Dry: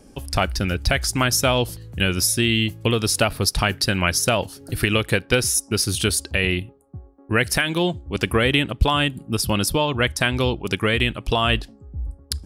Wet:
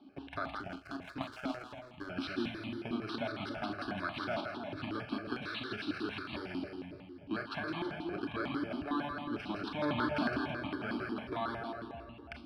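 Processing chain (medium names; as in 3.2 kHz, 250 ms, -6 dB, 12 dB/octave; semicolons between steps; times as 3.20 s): bit-reversed sample order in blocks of 16 samples; 9.82–10.38 s: waveshaping leveller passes 5; compression, threshold -22 dBFS, peak gain reduction 13 dB; cabinet simulation 260–3800 Hz, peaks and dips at 290 Hz +9 dB, 580 Hz +9 dB, 990 Hz -7 dB, 1.7 kHz +9 dB, 3.5 kHz -6 dB; static phaser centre 1.9 kHz, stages 6; two-band feedback delay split 770 Hz, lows 289 ms, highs 163 ms, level -3.5 dB; Schroeder reverb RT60 0.37 s, combs from 26 ms, DRR 6 dB; 0.60–2.10 s: power-law waveshaper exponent 1.4; stepped phaser 11 Hz 500–1500 Hz; trim -2.5 dB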